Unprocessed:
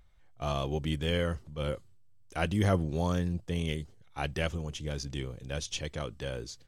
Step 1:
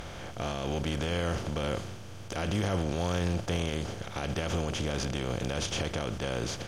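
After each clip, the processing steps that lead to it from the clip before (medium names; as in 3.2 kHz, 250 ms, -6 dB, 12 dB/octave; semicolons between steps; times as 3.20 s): spectral levelling over time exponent 0.4; peak limiter -20.5 dBFS, peak gain reduction 10 dB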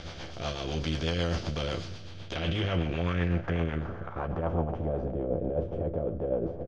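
rotary cabinet horn 8 Hz; doubling 12 ms -5 dB; low-pass sweep 4.7 kHz -> 550 Hz, 1.92–5.34 s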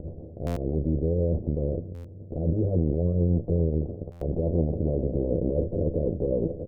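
Chebyshev shaper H 8 -18 dB, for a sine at -15 dBFS; steep low-pass 550 Hz 36 dB/octave; buffer glitch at 0.46/1.94/4.11 s, samples 512, times 8; trim +5 dB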